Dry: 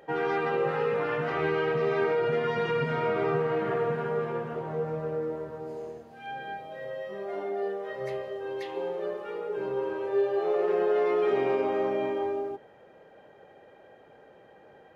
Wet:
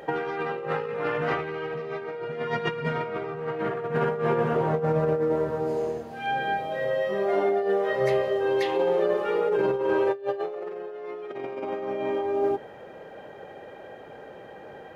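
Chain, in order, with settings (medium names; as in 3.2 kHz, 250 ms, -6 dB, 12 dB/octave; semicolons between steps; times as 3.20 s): compressor with a negative ratio -32 dBFS, ratio -0.5; trim +6.5 dB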